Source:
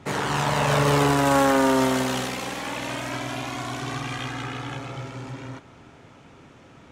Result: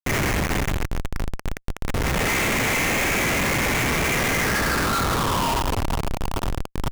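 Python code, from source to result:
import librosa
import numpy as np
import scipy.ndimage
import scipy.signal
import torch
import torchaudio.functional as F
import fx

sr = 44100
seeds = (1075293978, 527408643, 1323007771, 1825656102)

p1 = fx.bin_compress(x, sr, power=0.6)
p2 = fx.over_compress(p1, sr, threshold_db=-24.0, ratio=-1.0)
p3 = fx.high_shelf(p2, sr, hz=2600.0, db=-5.0)
p4 = p3 + fx.echo_multitap(p3, sr, ms=(64, 231, 422), db=(-9.0, -11.0, -11.0), dry=0)
p5 = fx.room_shoebox(p4, sr, seeds[0], volume_m3=230.0, walls='furnished', distance_m=1.7)
p6 = fx.filter_sweep_highpass(p5, sr, from_hz=2100.0, to_hz=920.0, start_s=4.32, end_s=5.5, q=4.4)
p7 = fx.peak_eq(p6, sr, hz=120.0, db=3.5, octaves=2.1)
p8 = fx.quant_dither(p7, sr, seeds[1], bits=10, dither='none')
y = fx.schmitt(p8, sr, flips_db=-19.5)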